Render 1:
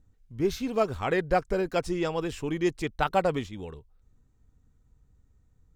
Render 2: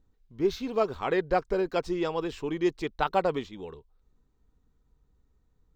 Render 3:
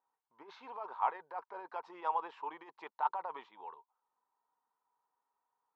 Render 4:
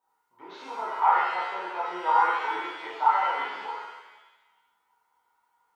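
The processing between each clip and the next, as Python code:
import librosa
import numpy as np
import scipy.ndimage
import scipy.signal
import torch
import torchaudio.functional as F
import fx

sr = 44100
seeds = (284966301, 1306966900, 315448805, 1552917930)

y1 = fx.graphic_eq_15(x, sr, hz=(100, 400, 1000, 4000, 10000), db=(-9, 5, 5, 5, -12))
y1 = y1 * 10.0 ** (-3.5 / 20.0)
y2 = fx.over_compress(y1, sr, threshold_db=-29.0, ratio=-1.0)
y2 = fx.ladder_bandpass(y2, sr, hz=980.0, resonance_pct=75)
y2 = y2 * 10.0 ** (4.0 / 20.0)
y3 = fx.rev_shimmer(y2, sr, seeds[0], rt60_s=1.1, semitones=7, shimmer_db=-8, drr_db=-8.5)
y3 = y3 * 10.0 ** (2.0 / 20.0)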